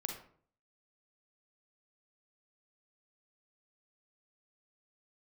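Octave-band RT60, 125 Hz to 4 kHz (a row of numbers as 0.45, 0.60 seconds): 0.70, 0.60, 0.55, 0.50, 0.40, 0.35 seconds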